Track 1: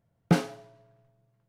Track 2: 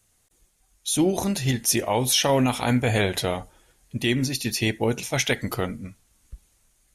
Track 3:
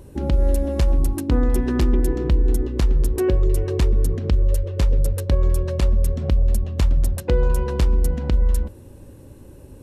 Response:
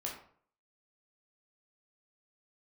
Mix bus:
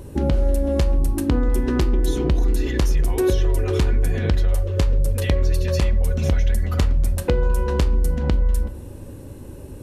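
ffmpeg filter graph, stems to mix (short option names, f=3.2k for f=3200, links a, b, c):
-filter_complex "[0:a]alimiter=limit=-15dB:level=0:latency=1,volume=-1dB[a];[1:a]equalizer=f=250:t=o:w=0.67:g=-10,equalizer=f=1.6k:t=o:w=0.67:g=9,equalizer=f=10k:t=o:w=0.67:g=-11,alimiter=limit=-16dB:level=0:latency=1,adelay=1200,volume=2dB[b];[2:a]volume=2.5dB,asplit=2[c][d];[d]volume=-4.5dB[e];[a][b]amix=inputs=2:normalize=0,aecho=1:1:4.1:0.94,acompressor=threshold=-29dB:ratio=6,volume=0dB[f];[3:a]atrim=start_sample=2205[g];[e][g]afir=irnorm=-1:irlink=0[h];[c][f][h]amix=inputs=3:normalize=0,acompressor=threshold=-17dB:ratio=3"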